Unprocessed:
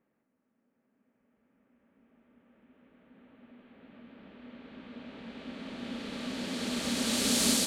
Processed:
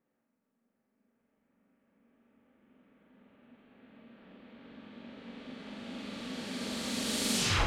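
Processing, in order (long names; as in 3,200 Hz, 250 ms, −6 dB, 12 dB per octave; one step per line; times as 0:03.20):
turntable brake at the end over 0.34 s
flutter between parallel walls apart 7.4 metres, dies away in 0.76 s
level −5 dB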